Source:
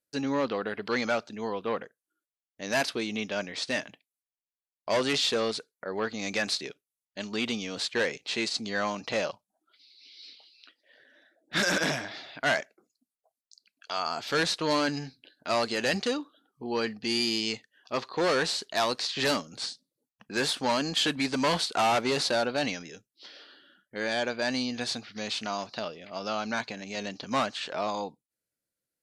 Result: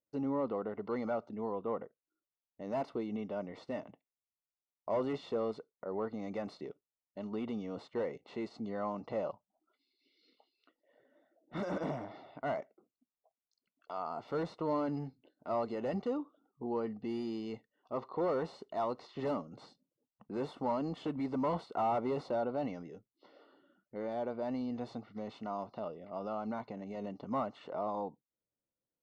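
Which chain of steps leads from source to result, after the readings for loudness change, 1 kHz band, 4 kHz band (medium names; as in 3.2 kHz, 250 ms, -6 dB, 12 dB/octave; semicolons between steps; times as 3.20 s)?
-9.0 dB, -7.0 dB, -26.5 dB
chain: in parallel at +1 dB: peak limiter -27.5 dBFS, peak gain reduction 10.5 dB; on the sum: Savitzky-Golay filter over 65 samples; trim -8.5 dB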